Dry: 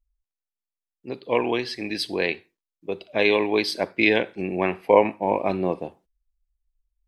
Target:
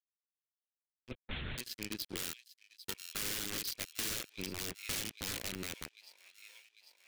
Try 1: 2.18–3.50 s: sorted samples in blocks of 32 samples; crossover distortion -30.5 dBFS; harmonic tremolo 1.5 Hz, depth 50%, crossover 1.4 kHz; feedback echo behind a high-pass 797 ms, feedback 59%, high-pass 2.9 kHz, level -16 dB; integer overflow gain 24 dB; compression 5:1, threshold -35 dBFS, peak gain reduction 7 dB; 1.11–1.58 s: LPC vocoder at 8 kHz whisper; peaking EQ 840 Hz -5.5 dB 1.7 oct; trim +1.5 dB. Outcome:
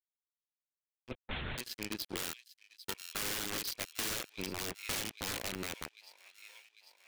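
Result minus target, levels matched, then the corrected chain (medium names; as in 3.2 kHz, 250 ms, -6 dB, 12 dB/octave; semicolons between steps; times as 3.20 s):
1 kHz band +5.0 dB
2.18–3.50 s: sorted samples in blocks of 32 samples; crossover distortion -30.5 dBFS; harmonic tremolo 1.5 Hz, depth 50%, crossover 1.4 kHz; feedback echo behind a high-pass 797 ms, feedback 59%, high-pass 2.9 kHz, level -16 dB; integer overflow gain 24 dB; compression 5:1, threshold -35 dBFS, peak gain reduction 7 dB; 1.11–1.58 s: LPC vocoder at 8 kHz whisper; peaking EQ 840 Hz -13 dB 1.7 oct; trim +1.5 dB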